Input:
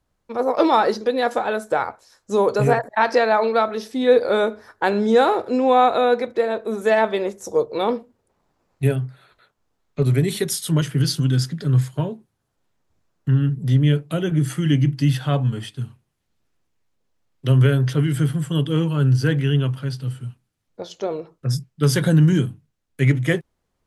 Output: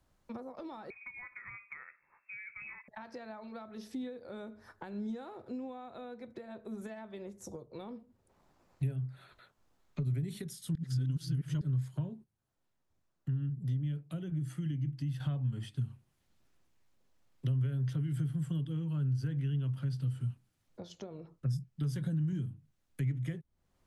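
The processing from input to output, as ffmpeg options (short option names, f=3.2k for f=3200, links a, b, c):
-filter_complex "[0:a]asettb=1/sr,asplit=3[a][b][c];[a]atrim=end=0.904[d];[b]atrim=start=0.9:end=2.88,asetpts=PTS-STARTPTS,afade=t=in:d=0.004:c=qsin,afade=t=out:st=1.976:d=0.004:c=qsin,lowpass=f=2.3k:t=q:w=0.5098,lowpass=f=2.3k:t=q:w=0.6013,lowpass=f=2.3k:t=q:w=0.9,lowpass=f=2.3k:t=q:w=2.563,afreqshift=-2700[e];[c]atrim=start=2.876[f];[d][e]acrossfade=d=0.004:c1=hsin:c2=qsin[g];[g][f]acrossfade=d=0.004:c1=qsin:c2=hsin,asplit=5[h][i][j][k][l];[h]atrim=end=10.752[m];[i]atrim=start=10.748:end=11.612,asetpts=PTS-STARTPTS,areverse[n];[j]atrim=start=11.608:end=12.24,asetpts=PTS-STARTPTS,afade=t=out:st=0.502:d=0.13:c=log:silence=0.316228[o];[k]atrim=start=12.24:end=15.2,asetpts=PTS-STARTPTS,volume=-10dB[p];[l]atrim=start=15.2,asetpts=PTS-STARTPTS,afade=t=in:d=0.13:c=log:silence=0.316228[q];[m][n]acrossfade=d=0.004:c1=hsin:c2=hsin[r];[o][p][q]concat=n=3:v=0:a=1[s];[r][s]acrossfade=d=0.004:c1=hsin:c2=hsin,acompressor=threshold=-29dB:ratio=6,bandreject=f=450:w=12,acrossover=split=210[t][u];[u]acompressor=threshold=-59dB:ratio=2[v];[t][v]amix=inputs=2:normalize=0"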